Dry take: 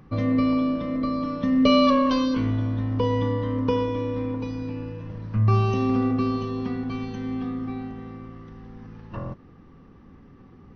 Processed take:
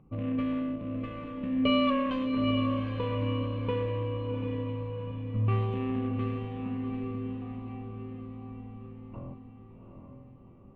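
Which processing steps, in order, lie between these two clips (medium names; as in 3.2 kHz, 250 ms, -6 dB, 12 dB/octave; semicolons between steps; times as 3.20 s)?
local Wiener filter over 25 samples; resonant high shelf 3.8 kHz -11 dB, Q 3; echo that smears into a reverb 761 ms, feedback 49%, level -5.5 dB; trim -8.5 dB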